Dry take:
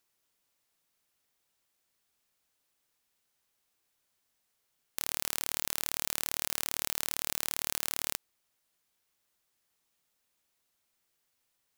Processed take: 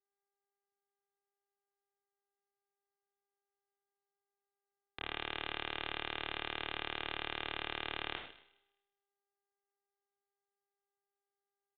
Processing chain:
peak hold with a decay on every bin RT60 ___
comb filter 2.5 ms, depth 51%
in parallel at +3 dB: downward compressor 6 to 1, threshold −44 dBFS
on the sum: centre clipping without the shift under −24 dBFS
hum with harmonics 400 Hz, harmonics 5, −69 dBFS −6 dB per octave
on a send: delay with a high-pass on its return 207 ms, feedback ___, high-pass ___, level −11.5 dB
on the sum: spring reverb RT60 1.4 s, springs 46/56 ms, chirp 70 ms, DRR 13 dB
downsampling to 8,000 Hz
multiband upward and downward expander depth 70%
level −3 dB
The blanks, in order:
1.85 s, 43%, 2,900 Hz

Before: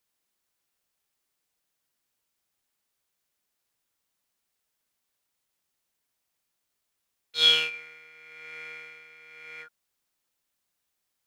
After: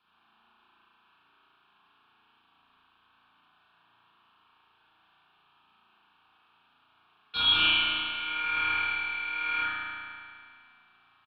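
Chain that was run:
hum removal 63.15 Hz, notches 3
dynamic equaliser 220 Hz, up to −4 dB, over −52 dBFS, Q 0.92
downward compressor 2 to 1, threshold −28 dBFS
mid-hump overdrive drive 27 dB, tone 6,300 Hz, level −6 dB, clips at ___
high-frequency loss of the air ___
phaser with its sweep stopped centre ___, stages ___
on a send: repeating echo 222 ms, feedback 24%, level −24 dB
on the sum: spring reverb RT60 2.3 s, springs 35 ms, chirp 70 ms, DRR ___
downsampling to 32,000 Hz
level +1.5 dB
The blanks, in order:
−12.5 dBFS, 440 metres, 2,000 Hz, 6, −8.5 dB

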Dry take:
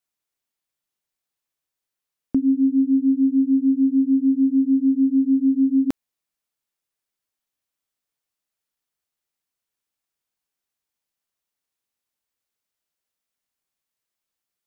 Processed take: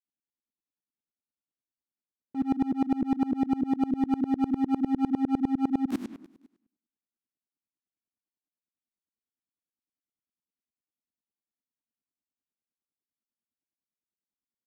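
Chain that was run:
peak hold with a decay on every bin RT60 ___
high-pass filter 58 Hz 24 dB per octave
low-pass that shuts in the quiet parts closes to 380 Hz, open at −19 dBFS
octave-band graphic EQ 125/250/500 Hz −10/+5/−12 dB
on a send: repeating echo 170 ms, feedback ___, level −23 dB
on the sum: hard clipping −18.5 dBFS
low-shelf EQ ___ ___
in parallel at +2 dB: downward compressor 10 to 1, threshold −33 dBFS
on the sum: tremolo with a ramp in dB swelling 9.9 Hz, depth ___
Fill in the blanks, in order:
0.69 s, 39%, 94 Hz, −9 dB, 26 dB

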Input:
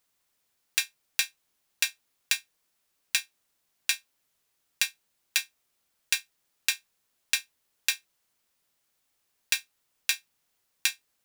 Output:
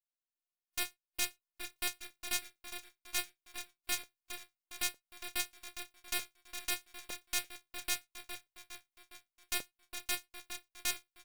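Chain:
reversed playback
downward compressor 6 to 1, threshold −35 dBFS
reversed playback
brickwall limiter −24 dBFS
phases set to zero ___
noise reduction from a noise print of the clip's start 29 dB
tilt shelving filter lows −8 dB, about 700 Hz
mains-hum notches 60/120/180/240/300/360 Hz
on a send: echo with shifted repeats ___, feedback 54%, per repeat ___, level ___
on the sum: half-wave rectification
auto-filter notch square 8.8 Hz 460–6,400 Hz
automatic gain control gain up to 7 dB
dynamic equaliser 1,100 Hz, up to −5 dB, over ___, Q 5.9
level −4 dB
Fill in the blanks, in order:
357 Hz, 410 ms, −33 Hz, −8 dB, −57 dBFS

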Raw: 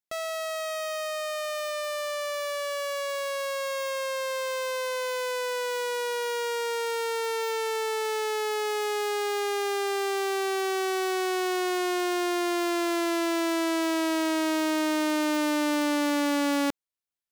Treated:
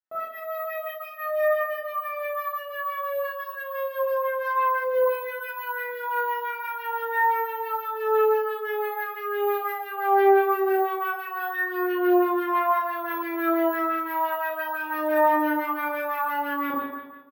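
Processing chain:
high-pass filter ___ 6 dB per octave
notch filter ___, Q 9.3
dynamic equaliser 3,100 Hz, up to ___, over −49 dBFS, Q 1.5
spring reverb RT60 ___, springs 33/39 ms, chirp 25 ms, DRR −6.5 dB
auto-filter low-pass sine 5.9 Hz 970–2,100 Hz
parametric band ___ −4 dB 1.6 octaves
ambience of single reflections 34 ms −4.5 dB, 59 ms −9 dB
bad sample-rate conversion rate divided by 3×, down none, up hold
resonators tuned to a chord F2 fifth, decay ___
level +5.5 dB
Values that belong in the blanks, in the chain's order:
270 Hz, 2,200 Hz, −5 dB, 1.2 s, 2,100 Hz, 0.23 s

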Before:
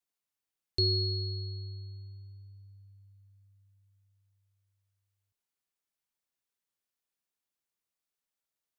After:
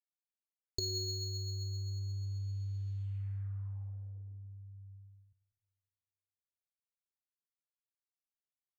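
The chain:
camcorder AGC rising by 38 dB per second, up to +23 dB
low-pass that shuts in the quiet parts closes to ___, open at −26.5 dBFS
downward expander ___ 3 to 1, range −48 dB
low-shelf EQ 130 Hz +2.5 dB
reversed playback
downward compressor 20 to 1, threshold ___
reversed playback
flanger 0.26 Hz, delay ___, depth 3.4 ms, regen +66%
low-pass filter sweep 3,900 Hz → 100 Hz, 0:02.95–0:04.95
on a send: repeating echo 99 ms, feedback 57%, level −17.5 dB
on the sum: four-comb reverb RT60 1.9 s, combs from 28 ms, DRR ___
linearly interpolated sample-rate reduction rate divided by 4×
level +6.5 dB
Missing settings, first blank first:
1,500 Hz, −53 dBFS, −37 dBFS, 3.6 ms, 13 dB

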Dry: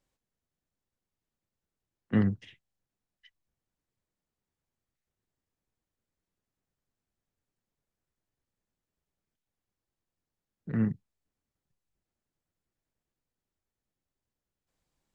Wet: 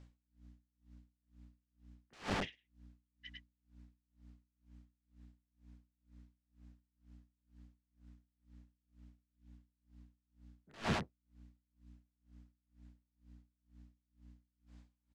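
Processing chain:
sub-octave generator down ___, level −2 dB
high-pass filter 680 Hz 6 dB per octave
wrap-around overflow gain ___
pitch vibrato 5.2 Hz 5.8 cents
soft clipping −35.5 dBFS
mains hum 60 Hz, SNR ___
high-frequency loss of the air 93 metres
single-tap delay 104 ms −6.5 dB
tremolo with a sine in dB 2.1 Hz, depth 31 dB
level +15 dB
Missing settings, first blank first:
1 octave, 37.5 dB, 13 dB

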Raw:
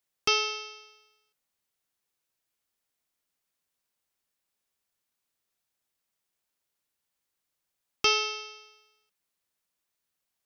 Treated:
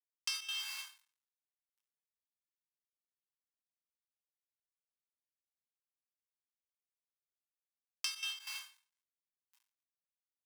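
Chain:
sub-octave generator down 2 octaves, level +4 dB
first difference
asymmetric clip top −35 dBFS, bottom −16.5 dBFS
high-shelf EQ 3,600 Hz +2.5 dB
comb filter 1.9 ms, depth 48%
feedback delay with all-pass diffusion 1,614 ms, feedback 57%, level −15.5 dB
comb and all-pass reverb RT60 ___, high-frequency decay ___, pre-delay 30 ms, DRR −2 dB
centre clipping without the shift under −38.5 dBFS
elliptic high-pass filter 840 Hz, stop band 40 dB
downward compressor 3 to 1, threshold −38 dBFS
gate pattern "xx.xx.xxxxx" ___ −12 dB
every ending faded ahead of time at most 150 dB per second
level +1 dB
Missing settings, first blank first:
3.9 s, 0.7×, 186 BPM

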